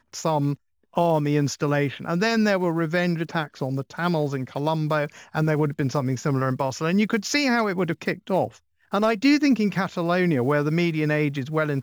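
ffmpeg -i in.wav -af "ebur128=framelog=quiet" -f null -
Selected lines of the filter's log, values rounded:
Integrated loudness:
  I:         -23.6 LUFS
  Threshold: -33.7 LUFS
Loudness range:
  LRA:         2.7 LU
  Threshold: -43.8 LUFS
  LRA low:   -25.2 LUFS
  LRA high:  -22.5 LUFS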